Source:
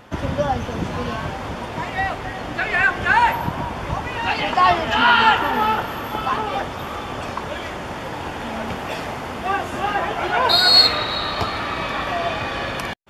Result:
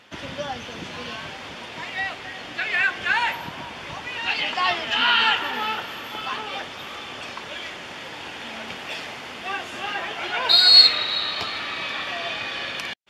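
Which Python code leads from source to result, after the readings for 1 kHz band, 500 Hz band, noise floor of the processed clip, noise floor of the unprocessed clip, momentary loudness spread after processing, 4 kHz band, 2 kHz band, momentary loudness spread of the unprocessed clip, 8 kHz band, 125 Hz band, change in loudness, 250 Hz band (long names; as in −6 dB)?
−9.0 dB, −10.0 dB, −37 dBFS, −30 dBFS, 17 LU, +1.5 dB, −3.0 dB, 15 LU, −3.0 dB, −15.5 dB, −0.5 dB, −11.0 dB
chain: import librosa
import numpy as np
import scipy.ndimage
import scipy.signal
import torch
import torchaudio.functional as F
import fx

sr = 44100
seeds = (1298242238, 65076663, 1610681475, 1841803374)

y = fx.weighting(x, sr, curve='D')
y = y * librosa.db_to_amplitude(-9.5)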